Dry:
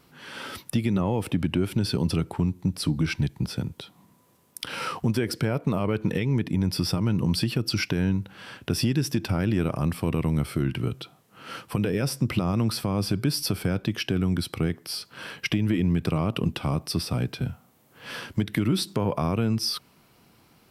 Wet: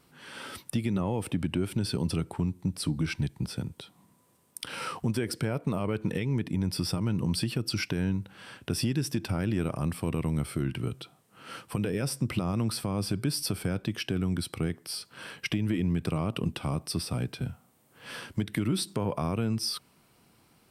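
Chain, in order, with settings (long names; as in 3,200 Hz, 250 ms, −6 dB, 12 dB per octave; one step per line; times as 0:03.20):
parametric band 8,700 Hz +8.5 dB 0.23 octaves
level −4.5 dB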